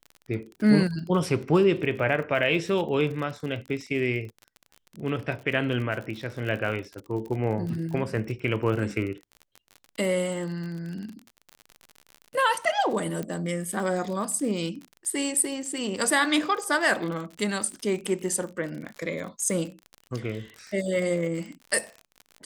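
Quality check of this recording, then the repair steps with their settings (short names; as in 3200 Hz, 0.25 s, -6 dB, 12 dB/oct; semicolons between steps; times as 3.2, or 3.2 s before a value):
crackle 41/s -33 dBFS
13.23 pop -20 dBFS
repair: de-click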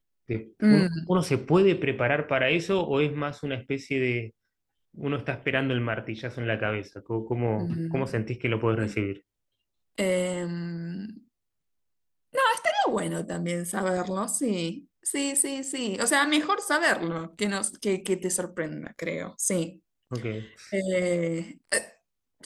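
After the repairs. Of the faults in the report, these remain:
none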